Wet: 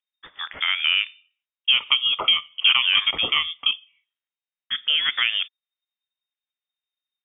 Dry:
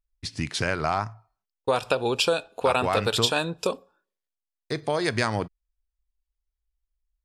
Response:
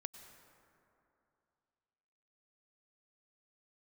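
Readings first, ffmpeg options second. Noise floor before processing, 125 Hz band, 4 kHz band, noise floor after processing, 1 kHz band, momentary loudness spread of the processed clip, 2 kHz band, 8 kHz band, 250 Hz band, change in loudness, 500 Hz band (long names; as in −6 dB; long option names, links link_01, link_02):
below −85 dBFS, below −20 dB, +13.0 dB, below −85 dBFS, −6.0 dB, 13 LU, +7.0 dB, below −40 dB, −18.0 dB, +6.0 dB, −19.0 dB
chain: -filter_complex "[0:a]acrossover=split=310 2600:gain=0.1 1 0.224[link_01][link_02][link_03];[link_01][link_02][link_03]amix=inputs=3:normalize=0,lowpass=frequency=3100:width_type=q:width=0.5098,lowpass=frequency=3100:width_type=q:width=0.6013,lowpass=frequency=3100:width_type=q:width=0.9,lowpass=frequency=3100:width_type=q:width=2.563,afreqshift=-3700,volume=5.5dB"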